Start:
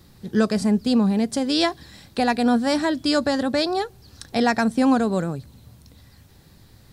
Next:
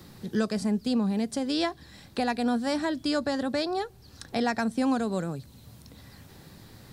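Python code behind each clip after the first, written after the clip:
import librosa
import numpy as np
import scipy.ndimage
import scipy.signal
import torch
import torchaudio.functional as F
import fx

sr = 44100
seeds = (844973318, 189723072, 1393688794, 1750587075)

y = fx.band_squash(x, sr, depth_pct=40)
y = F.gain(torch.from_numpy(y), -7.0).numpy()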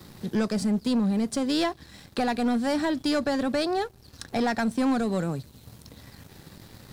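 y = fx.leveller(x, sr, passes=2)
y = F.gain(torch.from_numpy(y), -3.5).numpy()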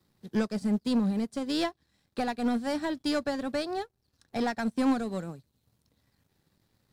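y = fx.upward_expand(x, sr, threshold_db=-37.0, expansion=2.5)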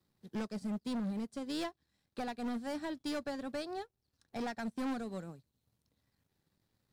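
y = np.clip(10.0 ** (25.5 / 20.0) * x, -1.0, 1.0) / 10.0 ** (25.5 / 20.0)
y = F.gain(torch.from_numpy(y), -8.0).numpy()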